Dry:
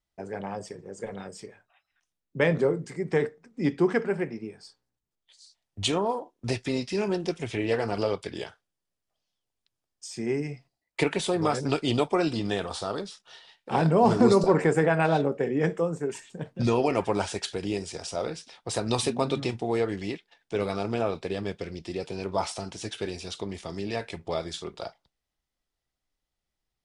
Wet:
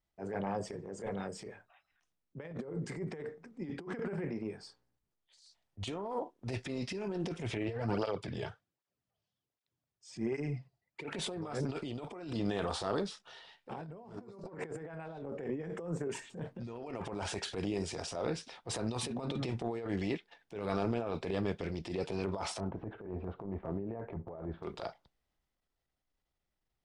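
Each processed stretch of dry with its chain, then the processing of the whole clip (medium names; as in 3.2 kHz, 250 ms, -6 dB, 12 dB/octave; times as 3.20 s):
7.68–11.12 s: low-pass 9 kHz + peaking EQ 110 Hz +8.5 dB 1.3 oct + cancelling through-zero flanger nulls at 1.3 Hz, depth 4.1 ms
22.60–24.63 s: Bessel low-pass 900 Hz, order 4 + compressor with a negative ratio -36 dBFS, ratio -0.5
whole clip: compressor with a negative ratio -30 dBFS, ratio -0.5; treble shelf 3.3 kHz -9 dB; transient shaper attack -10 dB, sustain +3 dB; trim -4 dB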